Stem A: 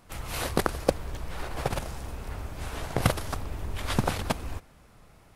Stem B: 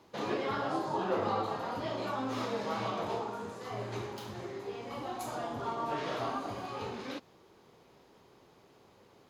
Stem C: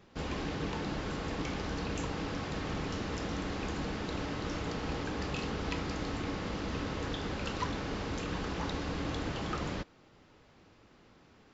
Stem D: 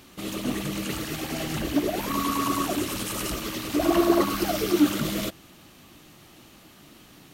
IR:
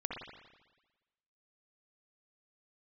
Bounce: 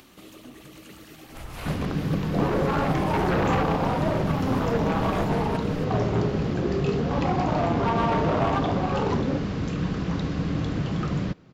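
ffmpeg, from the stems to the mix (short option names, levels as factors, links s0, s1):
-filter_complex "[0:a]adelay=1250,volume=0.794[s0];[1:a]afwtdn=0.0141,adynamicsmooth=sensitivity=6:basefreq=550,aeval=exprs='0.1*sin(PI/2*3.16*val(0)/0.1)':c=same,adelay=2200,volume=1.19[s1];[2:a]equalizer=f=150:w=0.89:g=13.5,bandreject=f=860:w=12,adelay=1500,volume=1.26[s2];[3:a]bandreject=f=50:t=h:w=6,bandreject=f=100:t=h:w=6,bandreject=f=150:t=h:w=6,bandreject=f=200:t=h:w=6,acrossover=split=170[s3][s4];[s4]acompressor=threshold=0.0631:ratio=6[s5];[s3][s5]amix=inputs=2:normalize=0,aeval=exprs='0.1*(abs(mod(val(0)/0.1+3,4)-2)-1)':c=same,volume=0.119[s6];[s0][s1]amix=inputs=2:normalize=0,acrossover=split=3300[s7][s8];[s8]acompressor=threshold=0.00631:ratio=4:attack=1:release=60[s9];[s7][s9]amix=inputs=2:normalize=0,alimiter=limit=0.112:level=0:latency=1:release=291,volume=1[s10];[s2][s6][s10]amix=inputs=3:normalize=0,acompressor=mode=upward:threshold=0.0126:ratio=2.5,equalizer=f=8300:t=o:w=1.9:g=-2.5"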